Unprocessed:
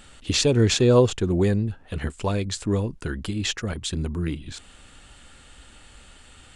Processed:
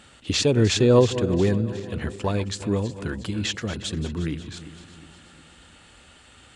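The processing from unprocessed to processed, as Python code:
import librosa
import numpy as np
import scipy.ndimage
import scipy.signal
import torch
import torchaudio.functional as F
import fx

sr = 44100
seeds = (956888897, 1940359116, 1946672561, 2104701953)

y = fx.reverse_delay_fb(x, sr, ms=180, feedback_pct=68, wet_db=-13.5)
y = scipy.signal.sosfilt(scipy.signal.butter(2, 76.0, 'highpass', fs=sr, output='sos'), y)
y = fx.high_shelf(y, sr, hz=9300.0, db=-8.0)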